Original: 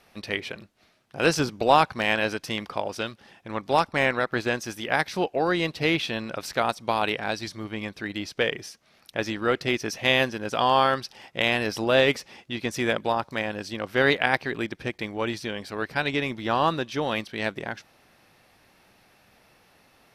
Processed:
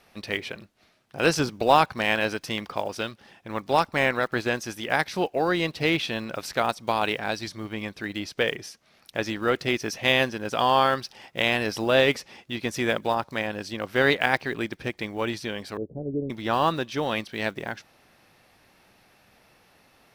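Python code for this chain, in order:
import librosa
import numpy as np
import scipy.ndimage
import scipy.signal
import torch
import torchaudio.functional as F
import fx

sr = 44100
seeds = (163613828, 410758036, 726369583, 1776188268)

y = fx.block_float(x, sr, bits=7)
y = fx.steep_lowpass(y, sr, hz=530.0, slope=36, at=(15.77, 16.3))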